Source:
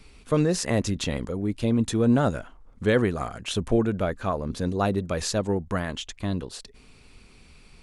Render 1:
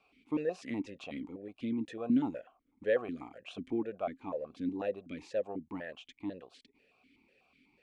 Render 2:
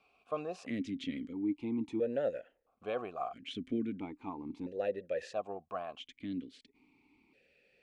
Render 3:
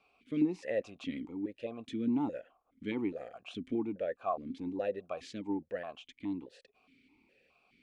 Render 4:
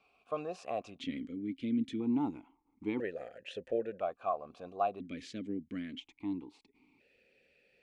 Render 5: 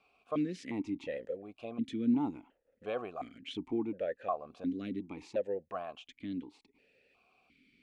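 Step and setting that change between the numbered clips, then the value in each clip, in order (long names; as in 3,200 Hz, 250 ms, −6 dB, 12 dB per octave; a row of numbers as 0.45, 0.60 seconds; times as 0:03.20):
formant filter that steps through the vowels, speed: 8.1, 1.5, 4.8, 1, 2.8 Hertz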